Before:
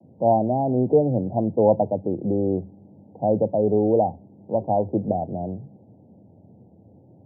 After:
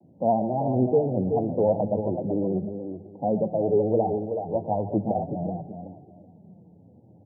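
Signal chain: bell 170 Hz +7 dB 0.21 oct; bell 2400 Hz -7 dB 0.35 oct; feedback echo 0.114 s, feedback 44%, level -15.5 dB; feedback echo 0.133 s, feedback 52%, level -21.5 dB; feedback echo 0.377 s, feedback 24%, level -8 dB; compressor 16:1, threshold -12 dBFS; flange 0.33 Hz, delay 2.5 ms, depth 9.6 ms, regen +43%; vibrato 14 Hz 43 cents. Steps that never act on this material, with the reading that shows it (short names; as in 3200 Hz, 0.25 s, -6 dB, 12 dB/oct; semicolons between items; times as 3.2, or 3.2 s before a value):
bell 2400 Hz: input band ends at 960 Hz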